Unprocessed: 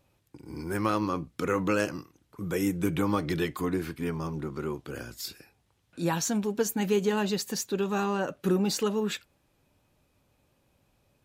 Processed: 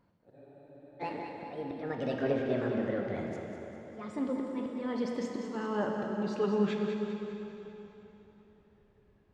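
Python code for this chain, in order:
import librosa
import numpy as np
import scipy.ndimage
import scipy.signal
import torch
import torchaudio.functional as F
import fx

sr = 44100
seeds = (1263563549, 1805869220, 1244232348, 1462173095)

p1 = fx.speed_glide(x, sr, from_pct=176, to_pct=65)
p2 = fx.auto_swell(p1, sr, attack_ms=504.0)
p3 = fx.spacing_loss(p2, sr, db_at_10k=32)
p4 = p3 + fx.echo_feedback(p3, sr, ms=199, feedback_pct=51, wet_db=-8.5, dry=0)
p5 = fx.rev_plate(p4, sr, seeds[0], rt60_s=3.7, hf_ratio=0.85, predelay_ms=0, drr_db=2.0)
y = fx.spec_freeze(p5, sr, seeds[1], at_s=0.38, hold_s=0.62)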